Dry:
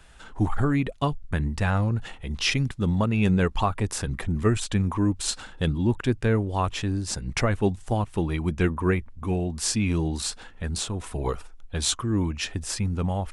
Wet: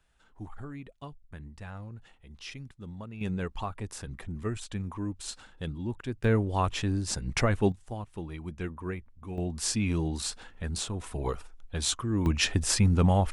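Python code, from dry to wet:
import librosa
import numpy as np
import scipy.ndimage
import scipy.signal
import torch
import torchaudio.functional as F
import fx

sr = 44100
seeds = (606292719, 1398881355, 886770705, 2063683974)

y = fx.gain(x, sr, db=fx.steps((0.0, -18.5), (3.21, -11.0), (6.24, -2.0), (7.72, -12.5), (9.38, -4.0), (12.26, 4.0)))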